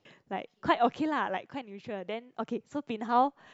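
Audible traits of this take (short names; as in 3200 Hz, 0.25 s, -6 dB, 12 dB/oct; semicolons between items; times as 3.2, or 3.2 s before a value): noise floor -72 dBFS; spectral tilt -3.0 dB/oct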